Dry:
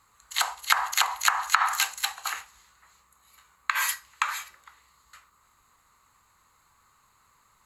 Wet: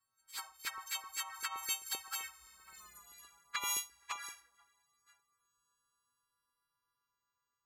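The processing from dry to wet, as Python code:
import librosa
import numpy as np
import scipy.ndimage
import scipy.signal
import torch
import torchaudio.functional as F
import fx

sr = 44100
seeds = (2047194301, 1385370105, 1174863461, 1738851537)

y = fx.freq_snap(x, sr, grid_st=3)
y = fx.doppler_pass(y, sr, speed_mps=19, closest_m=2.9, pass_at_s=2.88)
y = fx.high_shelf(y, sr, hz=2000.0, db=-5.5)
y = fx.env_flanger(y, sr, rest_ms=8.0, full_db=-38.0)
y = fx.filter_lfo_notch(y, sr, shape='saw_up', hz=7.7, low_hz=380.0, high_hz=3600.0, q=2.5)
y = y * librosa.db_to_amplitude(6.5)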